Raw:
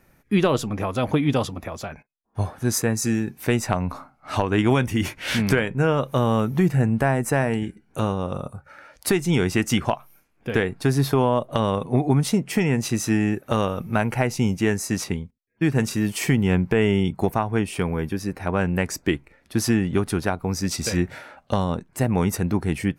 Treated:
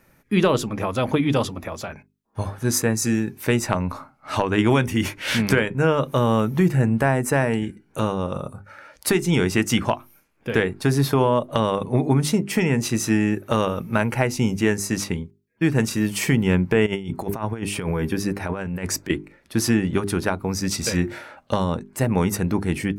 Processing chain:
mains-hum notches 50/100/150/200/250/300/350/400 Hz
0:16.86–0:19.10: compressor whose output falls as the input rises −26 dBFS, ratio −0.5
low-shelf EQ 64 Hz −5.5 dB
notch filter 730 Hz, Q 12
level +2 dB

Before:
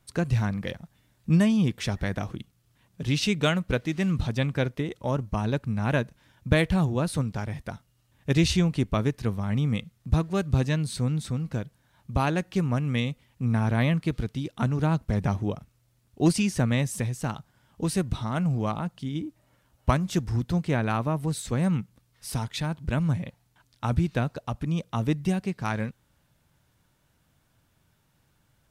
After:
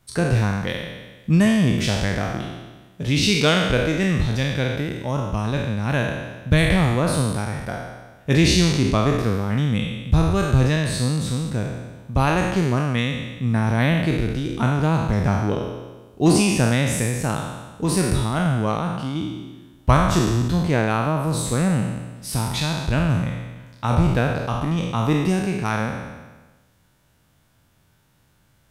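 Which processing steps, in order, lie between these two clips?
peak hold with a decay on every bin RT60 1.28 s
0:04.22–0:06.70: parametric band 650 Hz −4.5 dB 2.9 octaves
level +3.5 dB

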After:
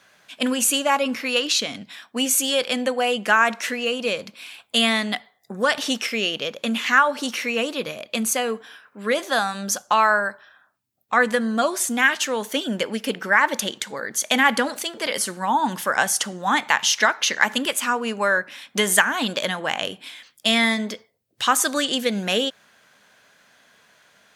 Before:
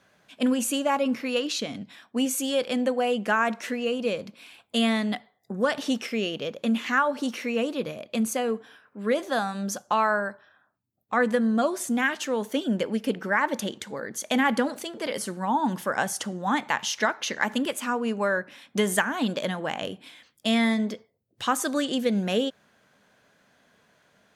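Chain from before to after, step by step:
tilt shelving filter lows −6 dB, about 750 Hz
level +4 dB

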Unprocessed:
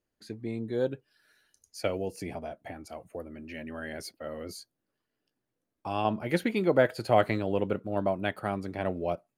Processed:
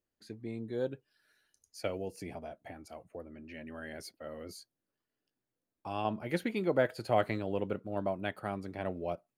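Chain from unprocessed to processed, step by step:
0:03.02–0:03.65: high-shelf EQ 5,300 Hz → 9,400 Hz −10.5 dB
level −5.5 dB

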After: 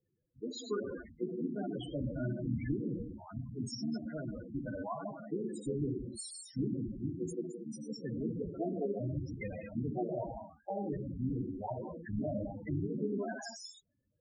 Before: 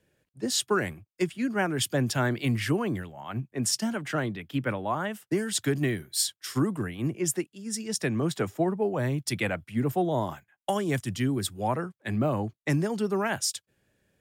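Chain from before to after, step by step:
sub-harmonics by changed cycles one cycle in 3, muted
reverb whose tail is shaped and stops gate 250 ms flat, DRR 0.5 dB
spectral peaks only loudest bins 8
level −7 dB

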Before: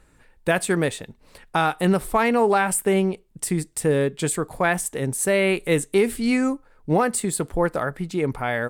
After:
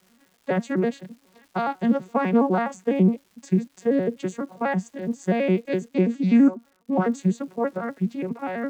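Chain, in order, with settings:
vocoder with an arpeggio as carrier major triad, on F#3, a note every 83 ms
surface crackle 430 per second −48 dBFS, from 0:05.88 130 per second, from 0:07.04 500 per second

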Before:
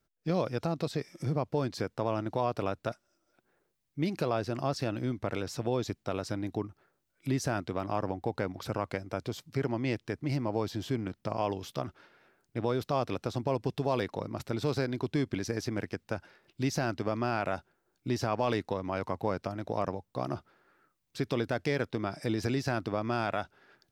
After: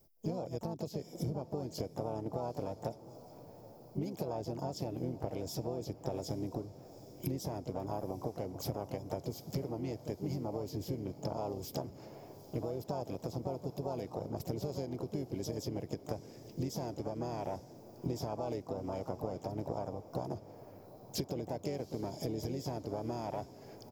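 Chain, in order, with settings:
drawn EQ curve 680 Hz 0 dB, 1,400 Hz −21 dB, 2,300 Hz −10 dB, 3,400 Hz −19 dB, 5,100 Hz +2 dB, 8,000 Hz −13 dB, 12,000 Hz +7 dB
downward compressor 20 to 1, threshold −44 dBFS, peak gain reduction 21 dB
pitch-shifted copies added −7 semitones −15 dB, +5 semitones −6 dB
parametric band 210 Hz −2 dB
feedback delay with all-pass diffusion 830 ms, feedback 56%, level −15.5 dB
level +10 dB

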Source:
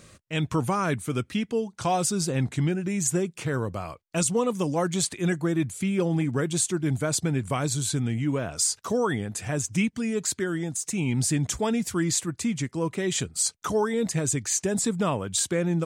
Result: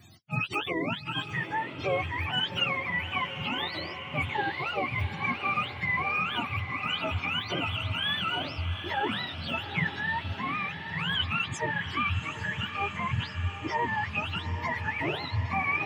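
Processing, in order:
frequency axis turned over on the octave scale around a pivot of 630 Hz
high-shelf EQ 2,900 Hz +11 dB
feedback delay with all-pass diffusion 807 ms, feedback 63%, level −9.5 dB
level −4 dB

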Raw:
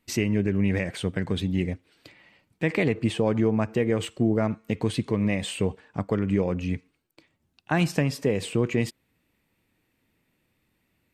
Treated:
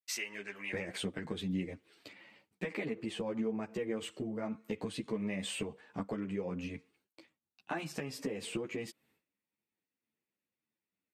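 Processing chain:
downward expander −59 dBFS
high-pass filter 1,100 Hz 12 dB per octave, from 0:00.73 170 Hz
downward compressor, threshold −32 dBFS, peak gain reduction 13 dB
string-ensemble chorus
level +1 dB

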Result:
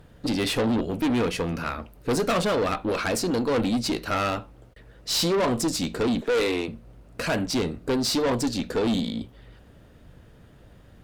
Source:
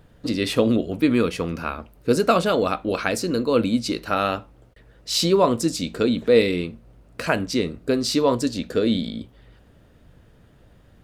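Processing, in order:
0:06.21–0:06.68: high-pass filter 260 Hz 24 dB per octave
tube saturation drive 23 dB, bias 0.35
level +3 dB

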